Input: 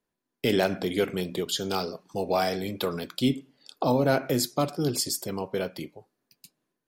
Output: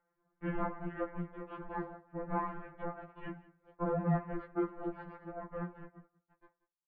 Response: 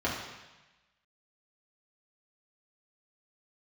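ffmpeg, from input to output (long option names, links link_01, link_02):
-filter_complex "[0:a]asettb=1/sr,asplit=3[link_01][link_02][link_03];[link_01]atrim=end=2.614[link_04];[link_02]atrim=start=2.61:end=4.82,asetpts=PTS-STARTPTS,afade=type=in:duration=0.004:curve=qsin,afade=type=out:start_time=2.206:duration=0.004:curve=qsin,highpass=270[link_05];[link_03]atrim=start=4.816[link_06];[link_04][link_05]acrossfade=duration=0.004:curve1=hsin:curve2=qsin[link_07];[link_07][link_06]acrossfade=duration=0.004:curve1=qsin:curve2=hsin,agate=range=-33dB:threshold=-55dB:ratio=3:detection=peak,acompressor=mode=upward:threshold=-35dB:ratio=2.5,aeval=exprs='clip(val(0),-1,0.00631)':channel_layout=same,flanger=delay=1:depth=7.7:regen=29:speed=0.75:shape=sinusoidal,aeval=exprs='abs(val(0))':channel_layout=same,aecho=1:1:184:0.1,highpass=frequency=460:width_type=q:width=0.5412,highpass=frequency=460:width_type=q:width=1.307,lowpass=frequency=2000:width_type=q:width=0.5176,lowpass=frequency=2000:width_type=q:width=0.7071,lowpass=frequency=2000:width_type=q:width=1.932,afreqshift=-370,afftfilt=real='re*2.83*eq(mod(b,8),0)':imag='im*2.83*eq(mod(b,8),0)':win_size=2048:overlap=0.75,volume=5dB"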